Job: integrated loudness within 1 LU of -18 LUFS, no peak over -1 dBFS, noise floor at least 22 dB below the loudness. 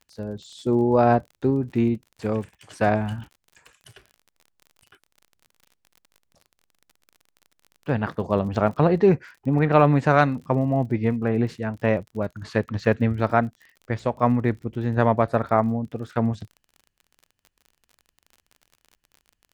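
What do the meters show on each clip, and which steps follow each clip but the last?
ticks 37/s; loudness -23.0 LUFS; peak -3.0 dBFS; loudness target -18.0 LUFS
-> de-click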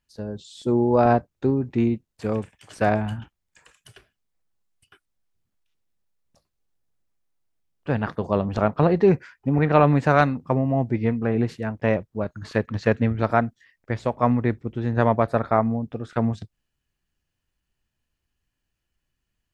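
ticks 0/s; loudness -23.0 LUFS; peak -3.0 dBFS; loudness target -18.0 LUFS
-> gain +5 dB; limiter -1 dBFS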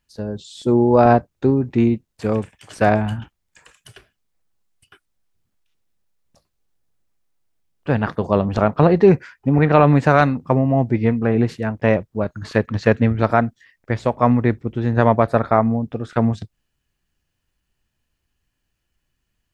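loudness -18.0 LUFS; peak -1.0 dBFS; noise floor -75 dBFS

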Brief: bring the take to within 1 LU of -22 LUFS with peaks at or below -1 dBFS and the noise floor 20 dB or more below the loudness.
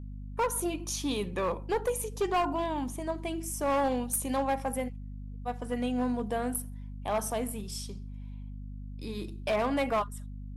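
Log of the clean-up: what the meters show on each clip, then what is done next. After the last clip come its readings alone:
clipped 1.6%; flat tops at -23.0 dBFS; hum 50 Hz; harmonics up to 250 Hz; hum level -38 dBFS; loudness -32.0 LUFS; peak -23.0 dBFS; loudness target -22.0 LUFS
-> clip repair -23 dBFS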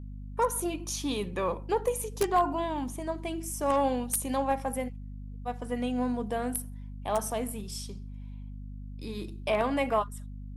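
clipped 0.0%; hum 50 Hz; harmonics up to 350 Hz; hum level -38 dBFS
-> notches 50/100/150/200/250/300 Hz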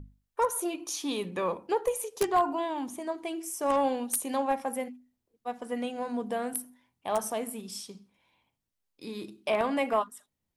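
hum none; loudness -31.5 LUFS; peak -13.5 dBFS; loudness target -22.0 LUFS
-> gain +9.5 dB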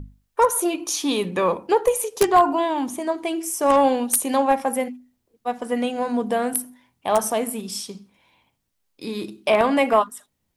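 loudness -22.0 LUFS; peak -4.0 dBFS; noise floor -74 dBFS

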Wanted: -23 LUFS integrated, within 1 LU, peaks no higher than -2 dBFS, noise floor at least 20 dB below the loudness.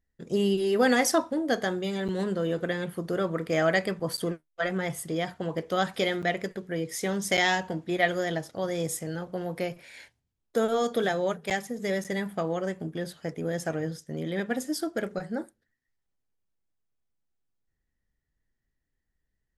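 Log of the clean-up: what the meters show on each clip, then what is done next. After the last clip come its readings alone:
dropouts 6; longest dropout 7.5 ms; loudness -29.0 LUFS; peak -11.5 dBFS; loudness target -23.0 LUFS
-> interpolate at 2.08/4.17/6.22/7.37/11.5/12.04, 7.5 ms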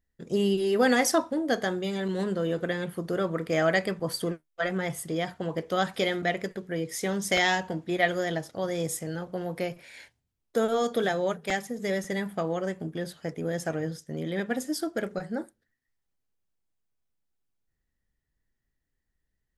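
dropouts 0; loudness -29.0 LUFS; peak -11.5 dBFS; loudness target -23.0 LUFS
-> gain +6 dB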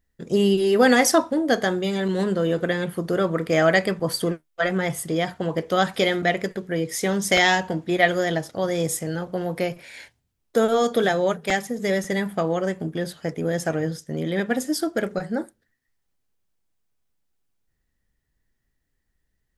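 loudness -23.0 LUFS; peak -5.5 dBFS; noise floor -75 dBFS

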